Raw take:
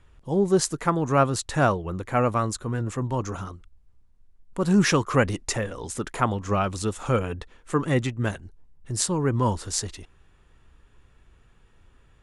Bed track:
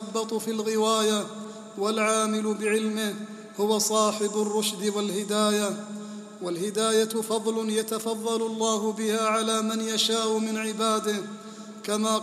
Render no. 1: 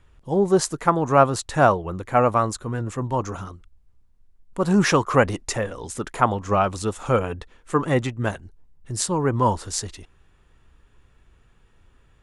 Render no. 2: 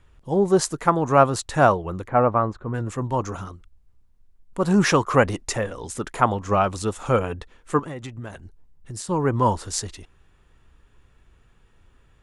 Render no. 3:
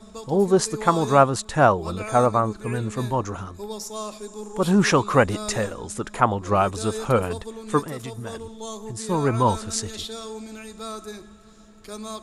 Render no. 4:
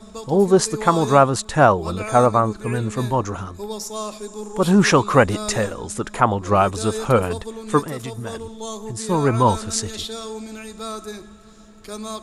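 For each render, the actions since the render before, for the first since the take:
dynamic bell 800 Hz, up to +7 dB, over -35 dBFS, Q 0.82
2.08–2.74 s: low-pass 1.6 kHz; 7.79–9.09 s: compression 12:1, threshold -30 dBFS
add bed track -10 dB
trim +3.5 dB; peak limiter -1 dBFS, peak gain reduction 2.5 dB

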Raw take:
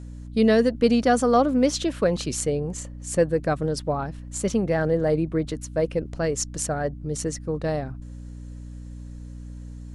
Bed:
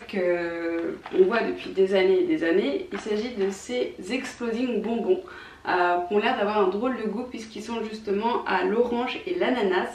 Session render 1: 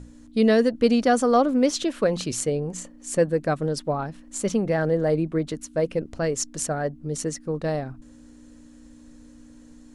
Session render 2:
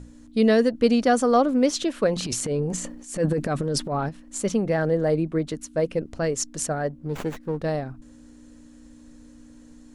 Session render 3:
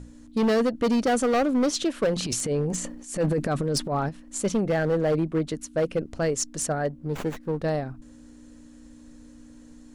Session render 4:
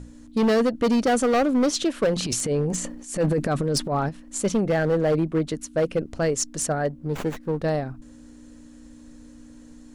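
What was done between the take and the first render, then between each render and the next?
hum notches 60/120/180 Hz
2.14–4.09 s: transient shaper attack -9 dB, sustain +10 dB; 6.90–7.62 s: sliding maximum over 9 samples
hard clipper -18.5 dBFS, distortion -11 dB
trim +2 dB

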